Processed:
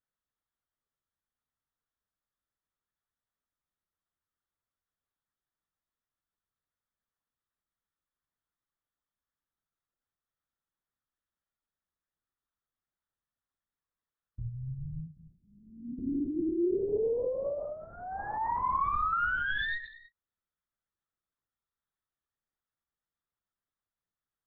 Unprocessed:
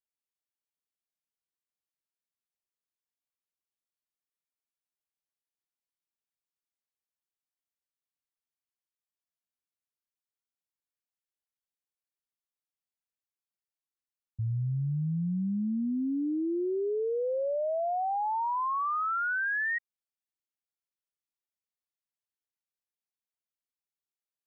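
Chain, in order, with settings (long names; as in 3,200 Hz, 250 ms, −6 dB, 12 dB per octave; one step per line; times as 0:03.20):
stylus tracing distortion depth 0.057 ms
brickwall limiter −35 dBFS, peak gain reduction 8 dB
phaser with its sweep stopped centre 700 Hz, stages 6
0:15.07–0:15.99: tuned comb filter 240 Hz, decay 0.31 s, mix 80%
0:17.65–0:19.13: frequency shifter −30 Hz
reverb whose tail is shaped and stops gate 340 ms falling, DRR 7.5 dB
linear-prediction vocoder at 8 kHz whisper
level +8.5 dB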